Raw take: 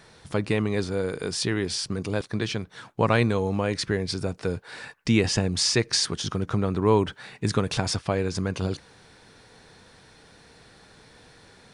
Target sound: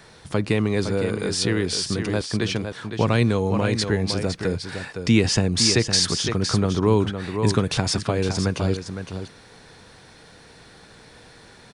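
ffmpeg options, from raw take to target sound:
ffmpeg -i in.wav -filter_complex "[0:a]aecho=1:1:511:0.376,acrossover=split=370|3000[link_01][link_02][link_03];[link_02]acompressor=threshold=-29dB:ratio=2.5[link_04];[link_01][link_04][link_03]amix=inputs=3:normalize=0,volume=4dB" out.wav

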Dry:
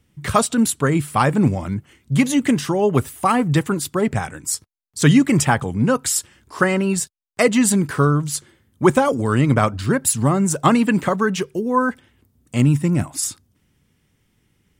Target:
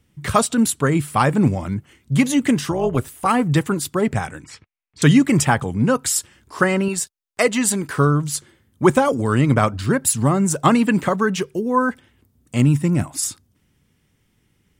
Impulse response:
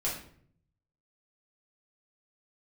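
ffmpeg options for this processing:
-filter_complex "[0:a]asplit=3[link_01][link_02][link_03];[link_01]afade=type=out:start_time=2.7:duration=0.02[link_04];[link_02]tremolo=f=250:d=0.667,afade=type=in:start_time=2.7:duration=0.02,afade=type=out:start_time=3.26:duration=0.02[link_05];[link_03]afade=type=in:start_time=3.26:duration=0.02[link_06];[link_04][link_05][link_06]amix=inputs=3:normalize=0,asettb=1/sr,asplit=3[link_07][link_08][link_09];[link_07]atrim=end=4.444[link_10];[link_08]atrim=start=4.44:end=5.02,asetpts=PTS-STARTPTS,afade=type=in:duration=0.004:curve=qsin,afade=type=out:start_time=0.576:duration=0.004:curve=qsin,lowpass=frequency=2400:width_type=q:width=3.3[link_11];[link_09]atrim=start=5.016[link_12];[link_10][link_11]acrossfade=duration=0.004:curve1=hsin:curve2=qsin[link_13];[link_13][link_12]acrossfade=duration=0.004:curve1=qsin:curve2=hsin,asettb=1/sr,asplit=3[link_14][link_15][link_16];[link_14]atrim=end=6.884[link_17];[link_15]atrim=start=6.88:end=7.98,asetpts=PTS-STARTPTS,afade=type=in:duration=0.004:curve=qsin,afade=type=out:start_time=1.096:duration=0.004:curve=qsin,equalizer=frequency=130:width=0.65:gain=-9[link_18];[link_16]atrim=start=7.976[link_19];[link_17][link_18]acrossfade=duration=0.004:curve1=hsin:curve2=qsin[link_20];[link_20][link_19]acrossfade=duration=0.004:curve1=qsin:curve2=hsin"

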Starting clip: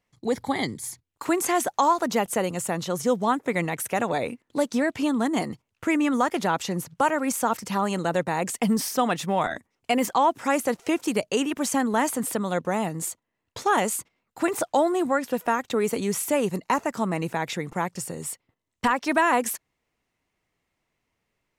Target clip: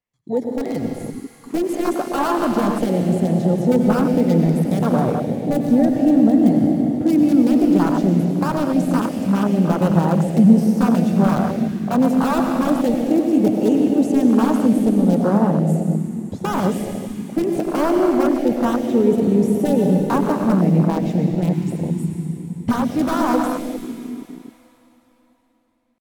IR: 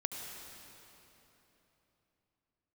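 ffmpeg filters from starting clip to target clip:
-filter_complex "[0:a]acrossover=split=230[link_01][link_02];[link_01]dynaudnorm=framelen=240:gausssize=13:maxgain=10dB[link_03];[link_02]aeval=exprs='(mod(6.31*val(0)+1,2)-1)/6.31':channel_layout=same[link_04];[link_03][link_04]amix=inputs=2:normalize=0,atempo=0.83[link_05];[1:a]atrim=start_sample=2205,asetrate=36162,aresample=44100[link_06];[link_05][link_06]afir=irnorm=-1:irlink=0,afwtdn=0.0891,volume=4dB"

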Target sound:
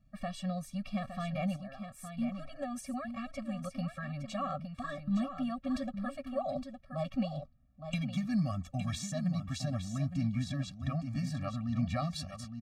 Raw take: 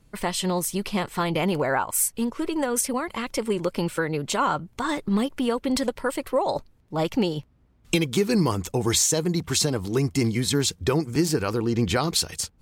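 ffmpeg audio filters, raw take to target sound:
ffmpeg -i in.wav -filter_complex "[0:a]aemphasis=mode=reproduction:type=75fm,asettb=1/sr,asplit=3[link_01][link_02][link_03];[link_01]atrim=end=1.564[link_04];[link_02]atrim=start=1.56:end=2.17,asetpts=PTS-STARTPTS,afade=type=in:duration=0.004:curve=qsin,afade=type=out:start_time=0.606:duration=0.004:curve=qsin,acompressor=threshold=-35dB:ratio=10[link_05];[link_03]atrim=start=2.166[link_06];[link_04][link_05]acrossfade=duration=0.004:curve1=hsin:curve2=qsin[link_07];[link_07][link_06]acrossfade=duration=0.004:curve1=qsin:curve2=hsin,asettb=1/sr,asplit=3[link_08][link_09][link_10];[link_08]atrim=end=10.064[link_11];[link_09]atrim=start=10.06:end=11.03,asetpts=PTS-STARTPTS,afade=type=in:duration=0.004:curve=qsin,afade=type=out:start_time=0.966:duration=0.004:curve=qsin,highshelf=frequency=5800:gain=-8.5[link_12];[link_10]atrim=start=11.026[link_13];[link_11][link_12]acrossfade=duration=0.004:curve1=hsin:curve2=qsin[link_14];[link_14][link_13]acrossfade=duration=0.004:curve1=qsin:curve2=hsin,aecho=1:1:863:0.376,afftfilt=real='re*eq(mod(floor(b*sr/1024/270),2),0)':imag='im*eq(mod(floor(b*sr/1024/270),2),0)':win_size=1024:overlap=0.75,volume=-8.5dB" out.wav

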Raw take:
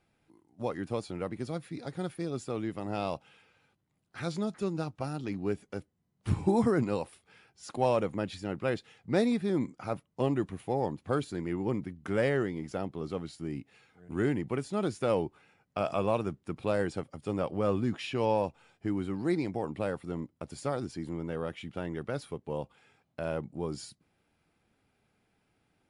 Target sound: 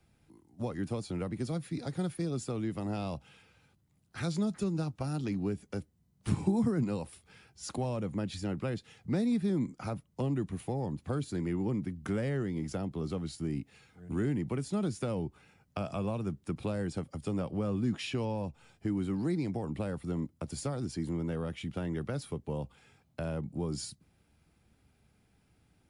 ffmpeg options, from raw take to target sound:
ffmpeg -i in.wav -filter_complex "[0:a]acrossover=split=160|990[link_01][link_02][link_03];[link_01]acompressor=threshold=-49dB:ratio=6[link_04];[link_04][link_02][link_03]amix=inputs=3:normalize=0,equalizer=frequency=65:width=2.5:gain=6.5,acrossover=split=210[link_05][link_06];[link_06]acompressor=threshold=-36dB:ratio=5[link_07];[link_05][link_07]amix=inputs=2:normalize=0,bass=frequency=250:gain=8,treble=frequency=4000:gain=6" out.wav

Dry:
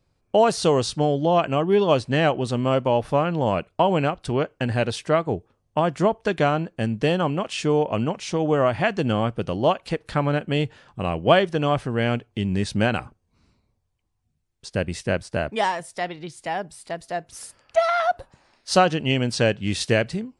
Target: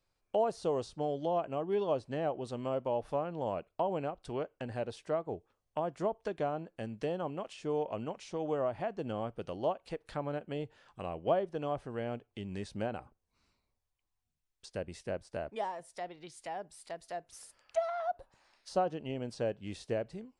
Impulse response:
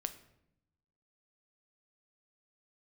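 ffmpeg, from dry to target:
-filter_complex "[0:a]equalizer=frequency=130:width=0.34:gain=-12.5,acrossover=split=840[link_01][link_02];[link_02]acompressor=threshold=-43dB:ratio=10[link_03];[link_01][link_03]amix=inputs=2:normalize=0,volume=-6dB"

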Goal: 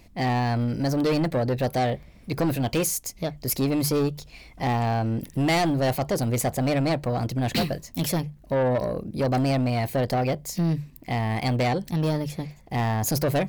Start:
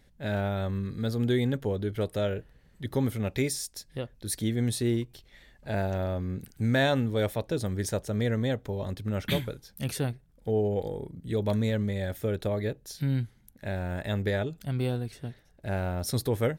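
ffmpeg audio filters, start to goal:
ffmpeg -i in.wav -af "bandreject=frequency=60:width_type=h:width=6,bandreject=frequency=120:width_type=h:width=6,asetrate=54243,aresample=44100,asoftclip=type=tanh:threshold=-27.5dB,volume=9dB" out.wav

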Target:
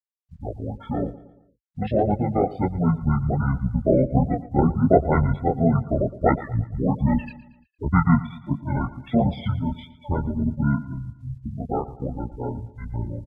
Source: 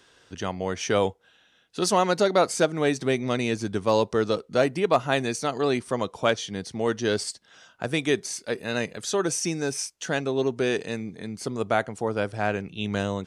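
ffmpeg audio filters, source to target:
ffmpeg -i in.wav -filter_complex "[0:a]anlmdn=1.58,afftfilt=real='re*gte(hypot(re,im),0.0891)':imag='im*gte(hypot(re,im),0.0891)':win_size=1024:overlap=0.75,lowpass=2300,lowshelf=frequency=200:gain=-4,aecho=1:1:0.9:0.62,dynaudnorm=framelen=310:gausssize=21:maxgain=12dB,acrusher=bits=11:mix=0:aa=0.000001,asplit=2[link_01][link_02];[link_02]asetrate=29433,aresample=44100,atempo=1.49831,volume=-5dB[link_03];[link_01][link_03]amix=inputs=2:normalize=0,flanger=delay=16.5:depth=7.8:speed=1.4,asetrate=25476,aresample=44100,atempo=1.73107,aecho=1:1:115|230|345|460:0.141|0.0678|0.0325|0.0156,volume=2dB" out.wav

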